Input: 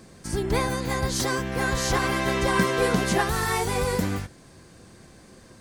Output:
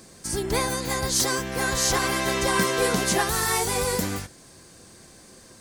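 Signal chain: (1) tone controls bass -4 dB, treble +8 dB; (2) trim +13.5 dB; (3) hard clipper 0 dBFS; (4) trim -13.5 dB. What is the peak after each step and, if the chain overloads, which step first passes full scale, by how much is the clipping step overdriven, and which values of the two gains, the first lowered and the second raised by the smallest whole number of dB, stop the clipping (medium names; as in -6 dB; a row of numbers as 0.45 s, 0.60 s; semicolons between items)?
-8.5 dBFS, +5.0 dBFS, 0.0 dBFS, -13.5 dBFS; step 2, 5.0 dB; step 2 +8.5 dB, step 4 -8.5 dB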